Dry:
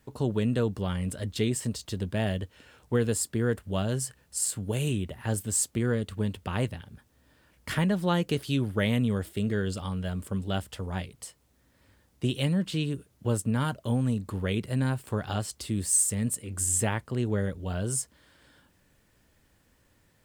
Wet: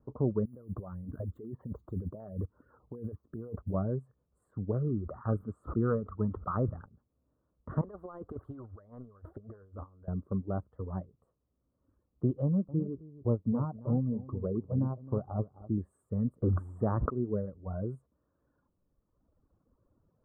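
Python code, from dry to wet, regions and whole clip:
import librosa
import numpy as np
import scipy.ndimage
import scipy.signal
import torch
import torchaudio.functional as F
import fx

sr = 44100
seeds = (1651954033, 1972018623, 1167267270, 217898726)

y = fx.chain(x, sr, fx.over_compress(threshold_db=-35.0, ratio=-1.0),
    fx.resample_bad(factor=4, down='filtered', up='zero_stuff'),
    fx.filter_held_notch(hz=12.0, low_hz=560.0, high_hz=7500.0), at=(0.45, 3.74))
y = fx.chain(y, sr, fx.peak_eq(hz=1300.0, db=14.5, octaves=0.46),
    fx.sustainer(db_per_s=54.0), at=(4.74, 6.86))
y = fx.chain(y, sr, fx.low_shelf_res(hz=120.0, db=7.0, q=3.0),
    fx.over_compress(threshold_db=-29.0, ratio=-0.5),
    fx.spectral_comp(ratio=2.0), at=(7.81, 10.08))
y = fx.chain(y, sr, fx.lowpass(hz=1100.0, slope=24),
    fx.echo_single(ms=264, db=-8.5), at=(12.42, 15.78))
y = fx.chain(y, sr, fx.block_float(bits=5),
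    fx.high_shelf(hz=5100.0, db=-4.5),
    fx.env_flatten(amount_pct=100), at=(16.42, 17.1))
y = fx.dereverb_blind(y, sr, rt60_s=2.0)
y = scipy.signal.sosfilt(scipy.signal.ellip(4, 1.0, 50, 1200.0, 'lowpass', fs=sr, output='sos'), y)
y = fx.peak_eq(y, sr, hz=870.0, db=-7.5, octaves=0.6)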